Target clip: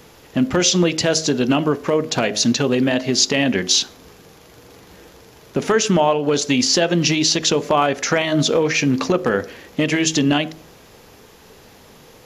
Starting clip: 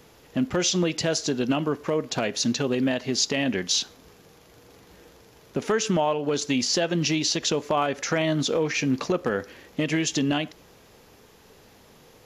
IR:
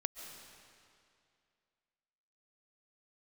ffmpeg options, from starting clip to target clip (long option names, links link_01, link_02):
-af "bandreject=frequency=52.92:width_type=h:width=4,bandreject=frequency=105.84:width_type=h:width=4,bandreject=frequency=158.76:width_type=h:width=4,bandreject=frequency=211.68:width_type=h:width=4,bandreject=frequency=264.6:width_type=h:width=4,bandreject=frequency=317.52:width_type=h:width=4,bandreject=frequency=370.44:width_type=h:width=4,bandreject=frequency=423.36:width_type=h:width=4,bandreject=frequency=476.28:width_type=h:width=4,bandreject=frequency=529.2:width_type=h:width=4,bandreject=frequency=582.12:width_type=h:width=4,bandreject=frequency=635.04:width_type=h:width=4,bandreject=frequency=687.96:width_type=h:width=4,bandreject=frequency=740.88:width_type=h:width=4,volume=7.5dB"